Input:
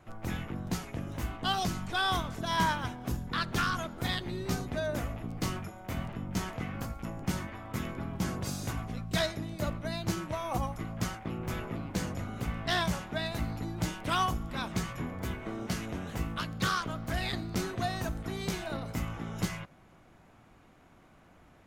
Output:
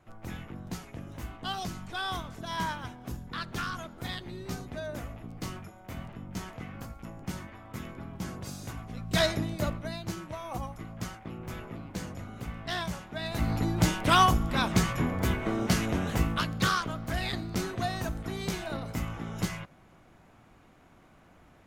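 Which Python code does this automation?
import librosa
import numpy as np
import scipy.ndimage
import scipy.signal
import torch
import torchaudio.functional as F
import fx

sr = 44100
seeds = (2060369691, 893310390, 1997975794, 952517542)

y = fx.gain(x, sr, db=fx.line((8.85, -4.5), (9.33, 7.5), (10.07, -4.0), (13.14, -4.0), (13.54, 8.0), (16.1, 8.0), (16.96, 1.0)))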